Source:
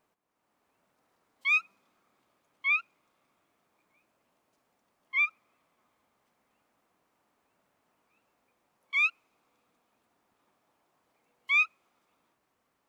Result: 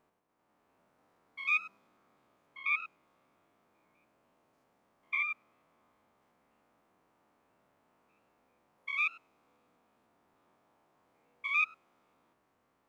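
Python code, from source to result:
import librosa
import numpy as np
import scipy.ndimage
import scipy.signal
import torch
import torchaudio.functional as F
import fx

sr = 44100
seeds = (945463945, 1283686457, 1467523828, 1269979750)

y = fx.spec_steps(x, sr, hold_ms=100)
y = fx.high_shelf(y, sr, hz=2500.0, db=-9.0)
y = y * librosa.db_to_amplitude(5.0)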